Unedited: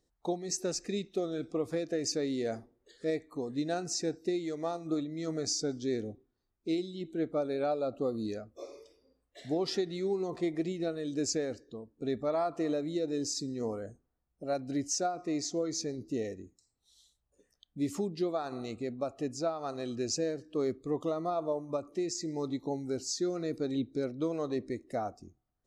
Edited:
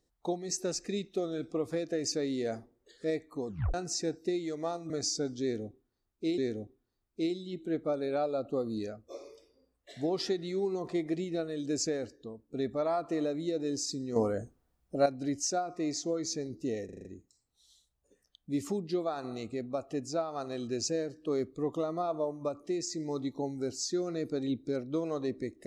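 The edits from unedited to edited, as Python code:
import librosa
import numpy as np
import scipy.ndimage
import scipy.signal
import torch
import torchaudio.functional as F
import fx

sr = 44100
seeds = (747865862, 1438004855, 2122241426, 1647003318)

y = fx.edit(x, sr, fx.tape_stop(start_s=3.47, length_s=0.27),
    fx.cut(start_s=4.9, length_s=0.44),
    fx.repeat(start_s=5.86, length_s=0.96, count=2),
    fx.clip_gain(start_s=13.64, length_s=0.9, db=7.5),
    fx.stutter(start_s=16.33, slice_s=0.04, count=6), tone=tone)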